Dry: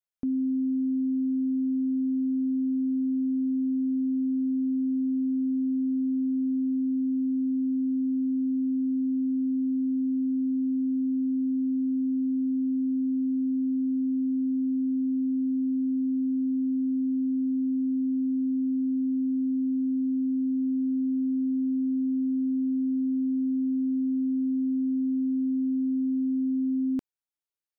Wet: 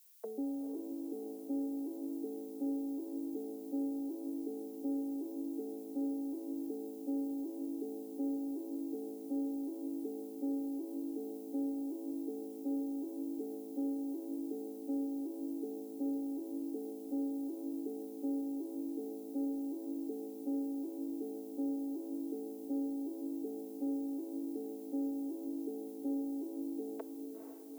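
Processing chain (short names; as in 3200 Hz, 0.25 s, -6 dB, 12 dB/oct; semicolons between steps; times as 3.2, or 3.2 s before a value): arpeggiated vocoder major triad, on A3, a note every 0.372 s; reverb removal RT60 2 s; Chebyshev high-pass 380 Hz, order 6; tilt -2.5 dB/oct; added noise violet -79 dBFS; diffused feedback echo 0.475 s, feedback 61%, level -6.5 dB; on a send at -19 dB: reverb RT60 2.3 s, pre-delay 19 ms; on the sum: gain +16.5 dB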